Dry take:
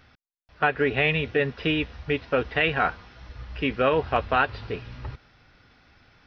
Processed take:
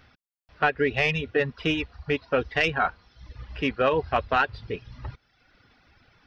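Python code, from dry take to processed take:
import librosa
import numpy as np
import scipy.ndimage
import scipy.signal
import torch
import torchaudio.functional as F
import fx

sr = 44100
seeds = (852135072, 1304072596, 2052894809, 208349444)

y = fx.tracing_dist(x, sr, depth_ms=0.026)
y = fx.dereverb_blind(y, sr, rt60_s=0.9)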